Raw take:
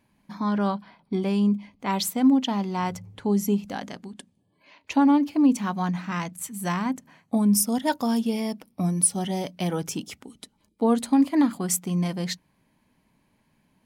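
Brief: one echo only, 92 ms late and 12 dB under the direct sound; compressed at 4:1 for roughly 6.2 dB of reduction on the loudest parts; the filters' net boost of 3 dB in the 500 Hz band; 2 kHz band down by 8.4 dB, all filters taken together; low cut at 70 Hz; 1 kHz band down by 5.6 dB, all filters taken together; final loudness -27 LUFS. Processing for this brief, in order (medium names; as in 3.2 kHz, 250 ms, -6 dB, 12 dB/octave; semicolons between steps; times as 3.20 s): high-pass 70 Hz; peaking EQ 500 Hz +6 dB; peaking EQ 1 kHz -8 dB; peaking EQ 2 kHz -8.5 dB; compression 4:1, threshold -21 dBFS; delay 92 ms -12 dB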